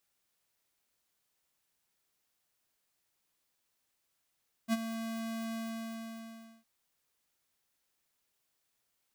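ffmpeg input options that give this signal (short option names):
-f lavfi -i "aevalsrc='0.0447*(2*lt(mod(226*t,1),0.5)-1)':d=1.96:s=44100,afade=t=in:d=0.049,afade=t=out:st=0.049:d=0.032:silence=0.282,afade=t=out:st=0.86:d=1.1"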